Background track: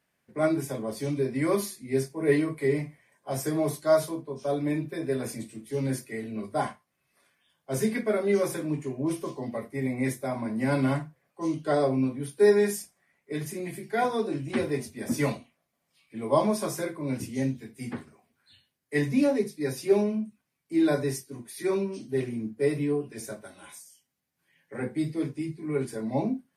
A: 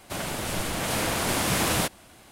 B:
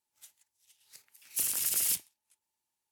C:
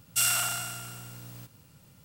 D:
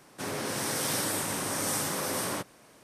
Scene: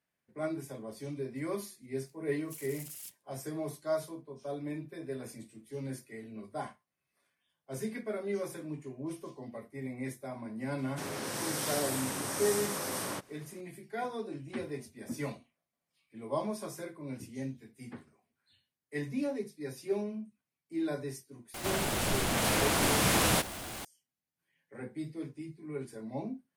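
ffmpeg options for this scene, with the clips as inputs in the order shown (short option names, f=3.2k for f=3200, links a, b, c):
-filter_complex "[0:a]volume=-10.5dB[a];[1:a]aeval=exprs='val(0)+0.5*0.0188*sgn(val(0))':c=same[b];[2:a]atrim=end=2.91,asetpts=PTS-STARTPTS,volume=-17.5dB,afade=t=in:d=0.004:c=hsin,afade=t=out:st=2.906:d=0.004:c=hsin,adelay=1140[c];[4:a]atrim=end=2.83,asetpts=PTS-STARTPTS,volume=-4.5dB,afade=t=in:d=0.004:c=hsin,afade=t=out:st=2.826:d=0.004:c=hsin,adelay=10780[d];[b]atrim=end=2.31,asetpts=PTS-STARTPTS,volume=-3dB,afade=t=in:d=0.004:c=hsin,afade=t=out:st=2.306:d=0.004:c=hsin,adelay=21540[e];[a][c][d][e]amix=inputs=4:normalize=0"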